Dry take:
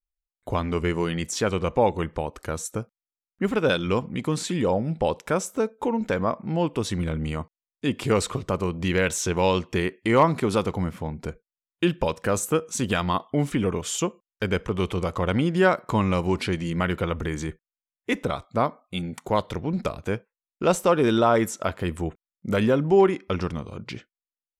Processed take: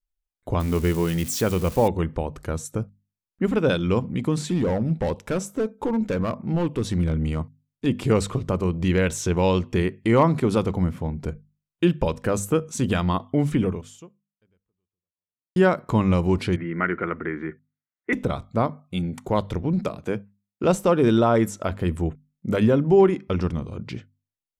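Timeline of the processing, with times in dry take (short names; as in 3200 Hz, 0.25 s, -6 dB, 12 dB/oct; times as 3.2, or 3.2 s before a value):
0.6–1.88 switching spikes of -22.5 dBFS
4.42–7.86 hard clip -20.5 dBFS
13.63–15.56 fade out exponential
16.56–18.13 speaker cabinet 260–2100 Hz, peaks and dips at 360 Hz +3 dB, 530 Hz -6 dB, 870 Hz -5 dB, 1400 Hz +8 dB, 2000 Hz +10 dB
19.84–20.64 HPF 160 Hz
whole clip: low shelf 390 Hz +9.5 dB; notches 50/100/150/200/250 Hz; gain -3 dB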